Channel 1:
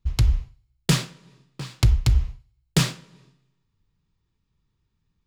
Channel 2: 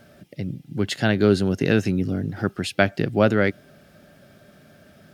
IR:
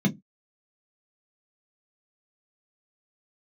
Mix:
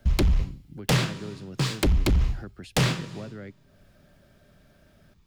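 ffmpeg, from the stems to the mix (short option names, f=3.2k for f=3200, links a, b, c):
-filter_complex "[0:a]acrossover=split=110|3700[a][b][c];[a]acompressor=threshold=-24dB:ratio=4[d];[b]acompressor=threshold=-21dB:ratio=4[e];[c]acompressor=threshold=-40dB:ratio=4[f];[d][e][f]amix=inputs=3:normalize=0,aeval=exprs='0.335*sin(PI/2*3.55*val(0)/0.335)':c=same,volume=-3.5dB[g];[1:a]acrossover=split=170|390[h][i][j];[h]acompressor=threshold=-35dB:ratio=4[k];[i]acompressor=threshold=-36dB:ratio=4[l];[j]acompressor=threshold=-38dB:ratio=4[m];[k][l][m]amix=inputs=3:normalize=0,volume=-9dB[n];[g][n]amix=inputs=2:normalize=0,alimiter=limit=-16dB:level=0:latency=1:release=22"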